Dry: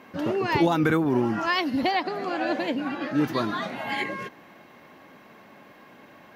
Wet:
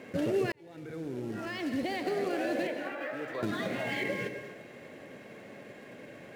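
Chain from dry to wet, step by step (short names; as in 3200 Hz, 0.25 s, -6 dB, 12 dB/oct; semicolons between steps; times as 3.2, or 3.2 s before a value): limiter -20 dBFS, peak gain reduction 9.5 dB; short-mantissa float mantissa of 2-bit; 2.67–3.43 three-band isolator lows -22 dB, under 540 Hz, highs -16 dB, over 2400 Hz; non-linear reverb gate 0.29 s flat, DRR 8 dB; compressor 2:1, threshold -33 dBFS, peak gain reduction 6 dB; ten-band EQ 125 Hz +7 dB, 500 Hz +10 dB, 1000 Hz -10 dB, 2000 Hz +5 dB; 0.52–2.09 fade in; decimation joined by straight lines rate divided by 2×; gain -1.5 dB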